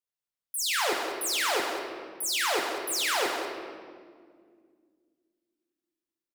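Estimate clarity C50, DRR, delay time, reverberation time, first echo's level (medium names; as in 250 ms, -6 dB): 2.5 dB, -0.5 dB, 189 ms, 2.0 s, -8.5 dB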